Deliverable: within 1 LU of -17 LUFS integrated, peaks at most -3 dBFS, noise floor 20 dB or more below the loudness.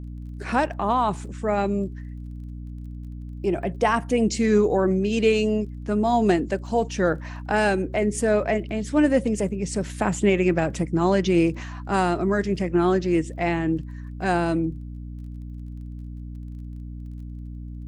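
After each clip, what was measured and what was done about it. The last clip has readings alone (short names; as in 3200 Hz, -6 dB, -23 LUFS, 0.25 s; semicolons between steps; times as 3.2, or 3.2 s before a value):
ticks 21/s; hum 60 Hz; harmonics up to 300 Hz; hum level -32 dBFS; loudness -23.0 LUFS; peak -8.5 dBFS; loudness target -17.0 LUFS
-> de-click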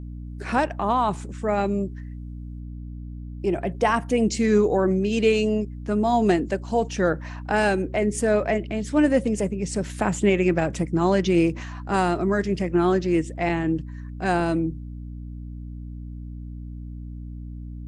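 ticks 0/s; hum 60 Hz; harmonics up to 300 Hz; hum level -32 dBFS
-> notches 60/120/180/240/300 Hz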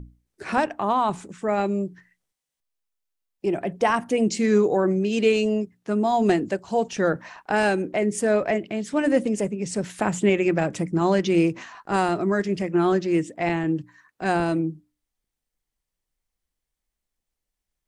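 hum none; loudness -23.5 LUFS; peak -8.5 dBFS; loudness target -17.0 LUFS
-> gain +6.5 dB; limiter -3 dBFS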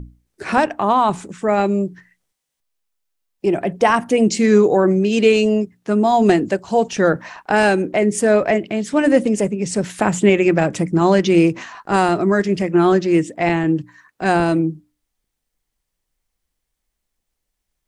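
loudness -17.0 LUFS; peak -3.0 dBFS; noise floor -78 dBFS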